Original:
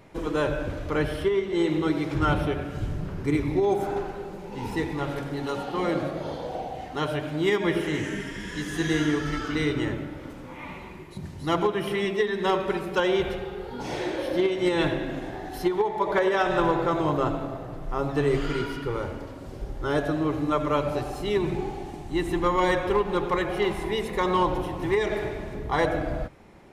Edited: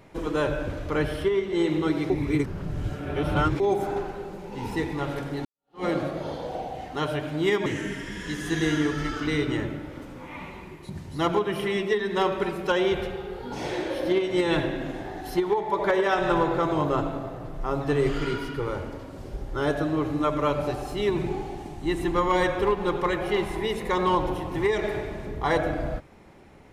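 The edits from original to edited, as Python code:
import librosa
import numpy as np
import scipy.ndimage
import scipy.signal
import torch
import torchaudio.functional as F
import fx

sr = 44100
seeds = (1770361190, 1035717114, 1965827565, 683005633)

y = fx.edit(x, sr, fx.reverse_span(start_s=2.1, length_s=1.5),
    fx.fade_in_span(start_s=5.45, length_s=0.39, curve='exp'),
    fx.cut(start_s=7.66, length_s=0.28), tone=tone)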